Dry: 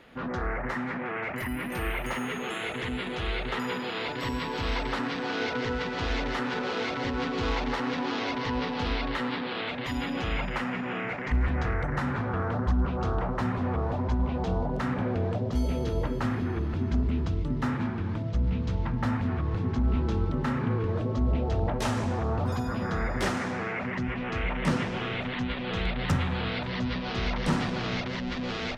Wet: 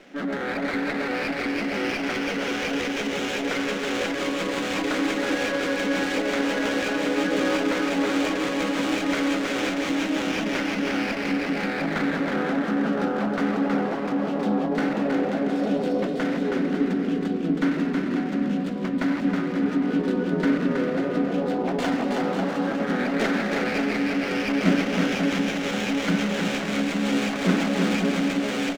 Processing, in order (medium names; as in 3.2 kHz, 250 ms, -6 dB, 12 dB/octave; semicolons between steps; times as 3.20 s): distance through air 100 m; pitch shift +2 st; Chebyshev band-pass 180–4900 Hz, order 5; peaking EQ 1 kHz -10.5 dB 0.57 oct; on a send: bouncing-ball echo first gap 320 ms, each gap 0.7×, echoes 5; on the sum: sliding maximum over 5 samples; trim +7 dB